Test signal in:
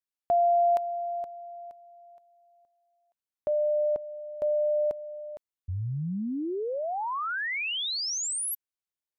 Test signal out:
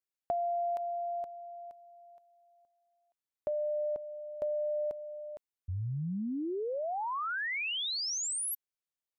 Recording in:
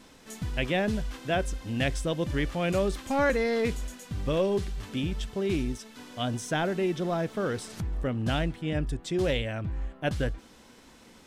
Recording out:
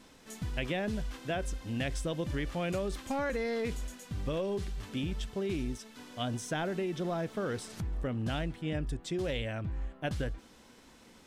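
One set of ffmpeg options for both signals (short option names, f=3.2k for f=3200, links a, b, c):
-af "acompressor=threshold=-30dB:ratio=6:attack=67:release=57:knee=1:detection=rms,volume=-3.5dB"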